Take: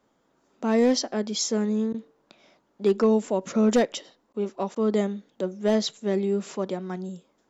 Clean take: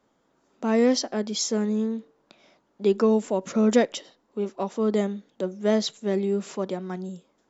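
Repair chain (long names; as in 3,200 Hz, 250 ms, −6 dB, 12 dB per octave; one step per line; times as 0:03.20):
clipped peaks rebuilt −13.5 dBFS
repair the gap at 0:01.93/0:04.33/0:04.75, 10 ms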